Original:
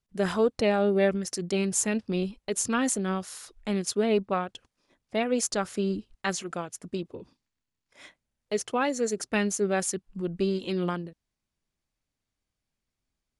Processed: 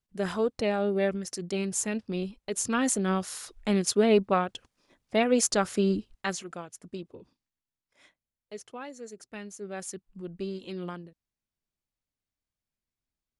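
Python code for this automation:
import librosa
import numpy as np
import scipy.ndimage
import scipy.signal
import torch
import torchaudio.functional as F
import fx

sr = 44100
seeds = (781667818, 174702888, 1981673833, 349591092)

y = fx.gain(x, sr, db=fx.line((2.4, -3.5), (3.23, 3.0), (5.96, 3.0), (6.54, -6.0), (7.12, -6.0), (8.99, -15.0), (9.52, -15.0), (9.93, -8.0)))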